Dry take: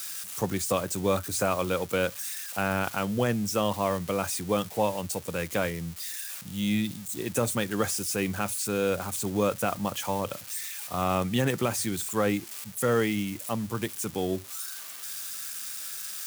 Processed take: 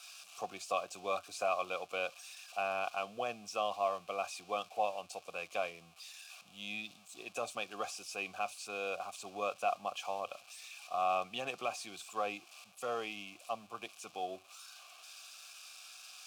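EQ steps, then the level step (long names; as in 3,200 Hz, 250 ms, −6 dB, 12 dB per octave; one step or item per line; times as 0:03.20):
high-shelf EQ 2,400 Hz +11 dB
dynamic equaliser 5,000 Hz, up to +6 dB, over −38 dBFS, Q 1
formant filter a
0.0 dB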